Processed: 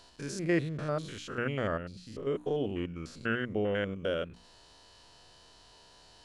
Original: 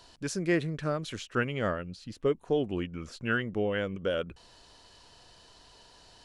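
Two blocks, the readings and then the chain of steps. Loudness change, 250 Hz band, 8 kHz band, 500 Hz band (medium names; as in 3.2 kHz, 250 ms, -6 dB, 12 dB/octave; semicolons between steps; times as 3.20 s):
-2.0 dB, -2.0 dB, no reading, -2.0 dB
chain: spectrogram pixelated in time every 100 ms; hum notches 60/120/180/240/300 Hz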